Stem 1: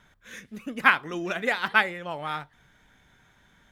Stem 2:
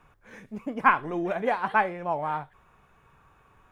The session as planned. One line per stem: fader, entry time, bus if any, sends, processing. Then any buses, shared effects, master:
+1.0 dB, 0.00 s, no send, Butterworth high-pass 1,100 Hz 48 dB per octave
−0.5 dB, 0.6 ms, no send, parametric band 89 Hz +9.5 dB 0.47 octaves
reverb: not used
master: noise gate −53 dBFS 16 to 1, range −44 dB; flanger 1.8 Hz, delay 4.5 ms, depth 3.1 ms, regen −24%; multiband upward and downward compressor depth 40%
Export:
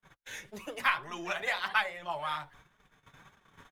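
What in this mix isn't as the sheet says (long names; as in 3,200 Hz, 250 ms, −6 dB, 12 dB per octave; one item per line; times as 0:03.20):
stem 1: missing Butterworth high-pass 1,100 Hz 48 dB per octave
stem 2: polarity flipped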